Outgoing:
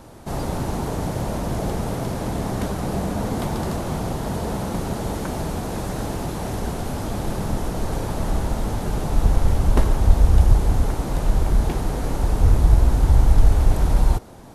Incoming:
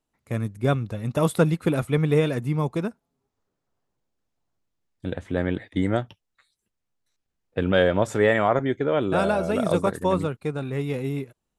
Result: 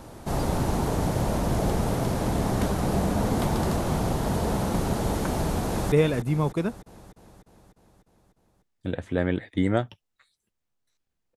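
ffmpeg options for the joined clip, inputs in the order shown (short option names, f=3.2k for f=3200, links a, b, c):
-filter_complex "[0:a]apad=whole_dur=11.36,atrim=end=11.36,atrim=end=5.922[a];[1:a]atrim=start=2.108:end=7.55[b];[a][b]acrossfade=d=0.004:c1=hsin:c2=hsin,asplit=2[c][d];[d]afade=t=in:st=5.66:d=0.01,afade=t=out:st=5.92:d=0.01,aecho=0:1:300|600|900|1200|1500|1800|2100|2400|2700:0.334965|0.217728|0.141523|0.0919899|0.0597934|0.0388657|0.0252627|0.0164208|0.0106735[e];[c][e]amix=inputs=2:normalize=0"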